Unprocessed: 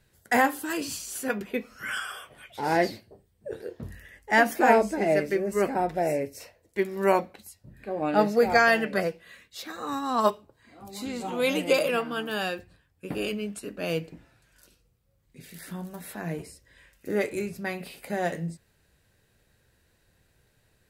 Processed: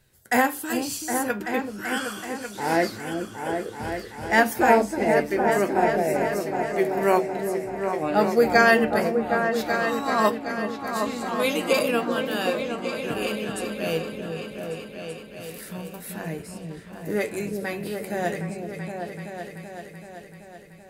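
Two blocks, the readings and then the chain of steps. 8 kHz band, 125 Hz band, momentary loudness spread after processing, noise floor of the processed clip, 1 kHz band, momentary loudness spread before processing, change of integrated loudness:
+4.5 dB, +3.0 dB, 16 LU, −44 dBFS, +3.5 dB, 19 LU, +2.5 dB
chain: high-shelf EQ 7,500 Hz +5.5 dB
flanger 0.15 Hz, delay 7.8 ms, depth 1.5 ms, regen +76%
echo whose low-pass opens from repeat to repeat 382 ms, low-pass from 400 Hz, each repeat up 2 octaves, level −3 dB
level +5.5 dB

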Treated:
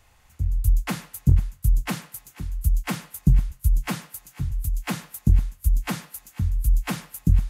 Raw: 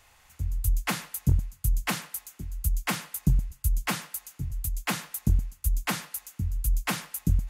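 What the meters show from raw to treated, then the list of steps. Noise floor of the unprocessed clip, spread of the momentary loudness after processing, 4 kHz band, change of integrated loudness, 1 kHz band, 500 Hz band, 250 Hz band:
−60 dBFS, 12 LU, −2.5 dB, +4.5 dB, −1.0 dB, +1.5 dB, +4.5 dB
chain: low-shelf EQ 470 Hz +9 dB
on a send: feedback echo with a high-pass in the loop 492 ms, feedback 70%, high-pass 540 Hz, level −18 dB
on the sum: level −3 dB

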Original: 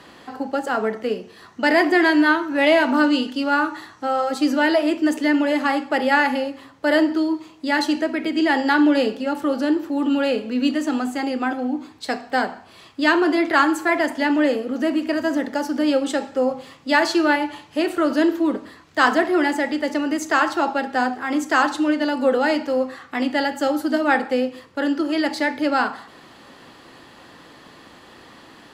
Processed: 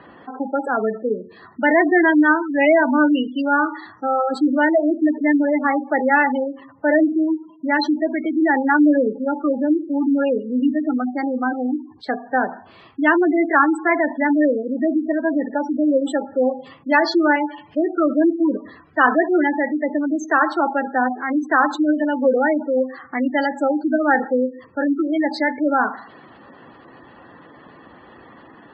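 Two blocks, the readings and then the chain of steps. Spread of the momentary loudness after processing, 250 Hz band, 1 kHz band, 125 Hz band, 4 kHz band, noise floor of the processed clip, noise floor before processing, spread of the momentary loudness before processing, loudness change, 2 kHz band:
9 LU, +2.0 dB, +1.5 dB, can't be measured, −8.0 dB, −47 dBFS, −47 dBFS, 9 LU, +1.5 dB, +1.0 dB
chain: gate on every frequency bin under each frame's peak −15 dB strong
low-pass that shuts in the quiet parts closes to 2,000 Hz, open at −17 dBFS
level +2 dB

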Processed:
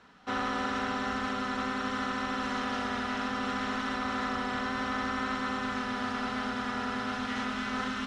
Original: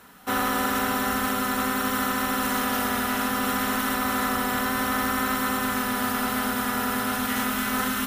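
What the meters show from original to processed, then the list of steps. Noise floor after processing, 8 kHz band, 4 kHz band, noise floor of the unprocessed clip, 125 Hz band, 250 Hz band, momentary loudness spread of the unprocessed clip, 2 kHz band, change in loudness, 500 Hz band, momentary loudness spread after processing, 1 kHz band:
−35 dBFS, −18.0 dB, −7.0 dB, −28 dBFS, −6.5 dB, −6.5 dB, 1 LU, −6.5 dB, −7.5 dB, −6.5 dB, 1 LU, −6.5 dB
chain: low-pass filter 5,600 Hz 24 dB per octave
level −6.5 dB

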